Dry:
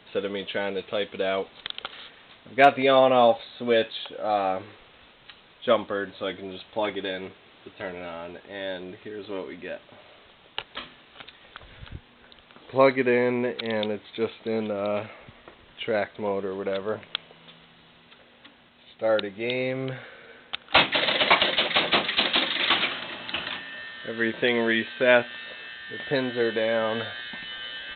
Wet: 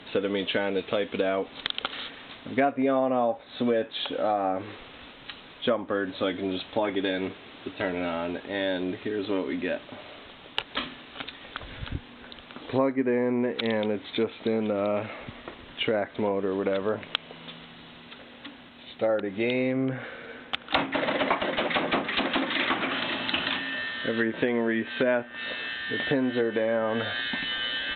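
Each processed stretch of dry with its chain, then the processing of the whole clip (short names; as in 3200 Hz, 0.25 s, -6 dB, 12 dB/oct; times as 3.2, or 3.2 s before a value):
19.72–20.68 block floating point 7-bit + treble ducked by the level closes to 2400 Hz, closed at -28.5 dBFS + air absorption 140 m
whole clip: treble ducked by the level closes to 1600 Hz, closed at -20.5 dBFS; bell 270 Hz +8.5 dB 0.3 oct; compressor 4:1, threshold -30 dBFS; gain +6.5 dB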